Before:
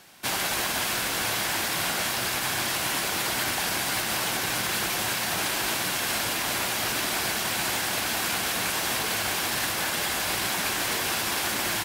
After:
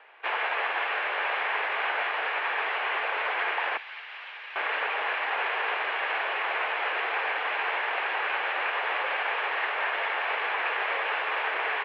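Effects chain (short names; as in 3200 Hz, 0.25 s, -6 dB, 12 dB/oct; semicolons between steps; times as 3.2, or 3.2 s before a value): mistuned SSB +89 Hz 380–2600 Hz; 3.77–4.56 differentiator; gain +2.5 dB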